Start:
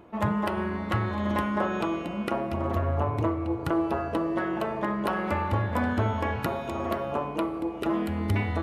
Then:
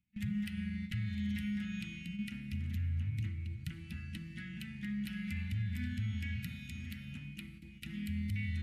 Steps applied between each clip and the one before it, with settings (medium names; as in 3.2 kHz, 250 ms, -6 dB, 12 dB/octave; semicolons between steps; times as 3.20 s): gate with hold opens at -23 dBFS; elliptic band-stop 200–2100 Hz, stop band 40 dB; peak limiter -25 dBFS, peak gain reduction 8 dB; trim -4 dB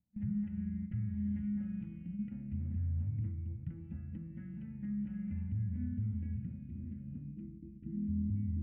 Savitzky-Golay filter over 25 samples; low-pass sweep 630 Hz -> 310 Hz, 5.06–8.24 s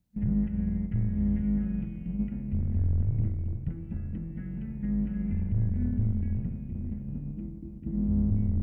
octave divider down 2 oct, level -5 dB; trim +8 dB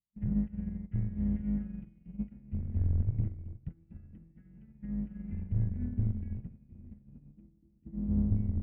upward expansion 2.5:1, over -39 dBFS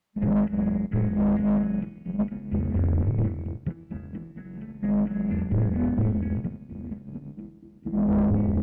overdrive pedal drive 30 dB, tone 1 kHz, clips at -19 dBFS; trim +4.5 dB